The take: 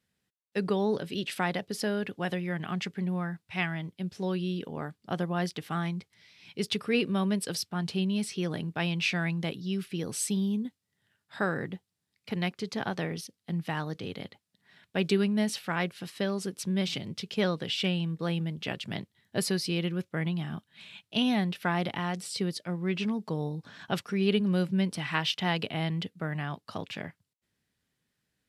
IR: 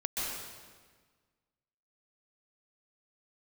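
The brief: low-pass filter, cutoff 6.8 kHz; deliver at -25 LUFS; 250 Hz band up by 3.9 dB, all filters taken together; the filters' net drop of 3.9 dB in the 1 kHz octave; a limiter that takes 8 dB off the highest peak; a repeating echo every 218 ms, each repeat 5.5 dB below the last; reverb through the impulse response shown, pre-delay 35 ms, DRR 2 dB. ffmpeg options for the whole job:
-filter_complex "[0:a]lowpass=6800,equalizer=f=250:t=o:g=6,equalizer=f=1000:t=o:g=-6,alimiter=limit=0.1:level=0:latency=1,aecho=1:1:218|436|654|872|1090|1308|1526:0.531|0.281|0.149|0.079|0.0419|0.0222|0.0118,asplit=2[s0][s1];[1:a]atrim=start_sample=2205,adelay=35[s2];[s1][s2]afir=irnorm=-1:irlink=0,volume=0.422[s3];[s0][s3]amix=inputs=2:normalize=0,volume=1.33"

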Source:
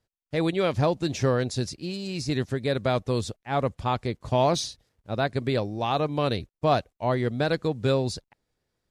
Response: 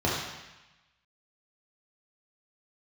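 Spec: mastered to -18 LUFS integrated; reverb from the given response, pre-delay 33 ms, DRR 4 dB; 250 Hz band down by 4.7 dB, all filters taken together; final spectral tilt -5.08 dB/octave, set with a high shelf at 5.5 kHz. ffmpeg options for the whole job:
-filter_complex "[0:a]equalizer=f=250:t=o:g=-7,highshelf=f=5500:g=9,asplit=2[s0][s1];[1:a]atrim=start_sample=2205,adelay=33[s2];[s1][s2]afir=irnorm=-1:irlink=0,volume=0.141[s3];[s0][s3]amix=inputs=2:normalize=0,volume=2.37"

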